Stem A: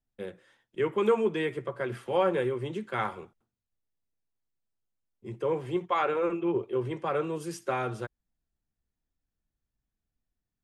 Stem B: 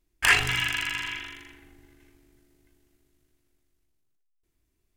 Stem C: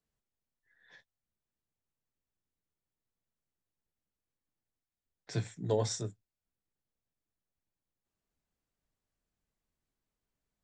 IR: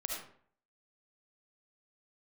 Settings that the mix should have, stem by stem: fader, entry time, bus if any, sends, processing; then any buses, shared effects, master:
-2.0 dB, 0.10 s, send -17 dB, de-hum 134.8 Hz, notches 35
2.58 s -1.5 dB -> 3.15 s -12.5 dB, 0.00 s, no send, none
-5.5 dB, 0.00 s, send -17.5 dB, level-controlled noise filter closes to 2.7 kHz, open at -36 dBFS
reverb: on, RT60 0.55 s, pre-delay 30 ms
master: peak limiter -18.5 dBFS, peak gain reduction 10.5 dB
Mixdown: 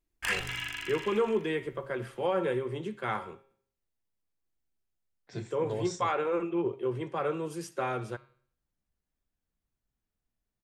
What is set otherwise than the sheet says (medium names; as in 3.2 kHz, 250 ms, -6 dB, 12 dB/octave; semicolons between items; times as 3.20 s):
stem B -1.5 dB -> -9.5 dB; reverb return -7.0 dB